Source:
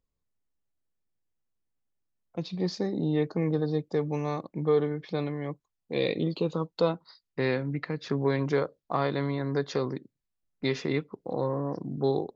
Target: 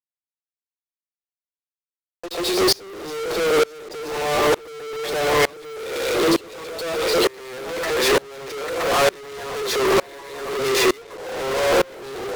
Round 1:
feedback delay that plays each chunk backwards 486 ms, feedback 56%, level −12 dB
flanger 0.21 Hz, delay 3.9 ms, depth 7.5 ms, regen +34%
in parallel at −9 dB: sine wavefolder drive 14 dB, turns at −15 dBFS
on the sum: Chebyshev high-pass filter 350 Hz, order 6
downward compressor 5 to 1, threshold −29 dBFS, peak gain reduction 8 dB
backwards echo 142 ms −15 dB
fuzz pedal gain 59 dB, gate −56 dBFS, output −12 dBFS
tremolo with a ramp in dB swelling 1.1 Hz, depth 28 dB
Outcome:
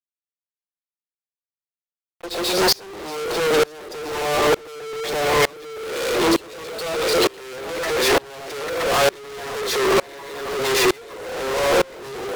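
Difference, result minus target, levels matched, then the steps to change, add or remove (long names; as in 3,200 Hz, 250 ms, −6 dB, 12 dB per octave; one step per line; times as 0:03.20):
sine wavefolder: distortion +16 dB
change: sine wavefolder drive 5 dB, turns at −15 dBFS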